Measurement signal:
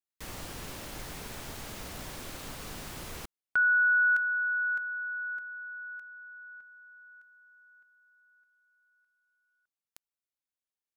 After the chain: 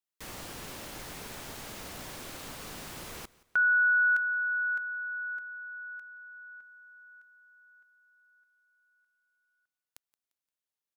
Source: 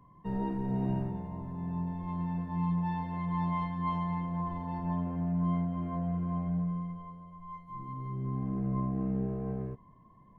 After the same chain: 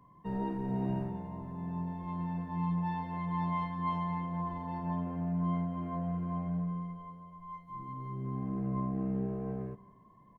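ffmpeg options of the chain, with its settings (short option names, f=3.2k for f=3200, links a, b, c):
-af "lowshelf=f=110:g=-7.5,aecho=1:1:174|348|522:0.0794|0.0302|0.0115"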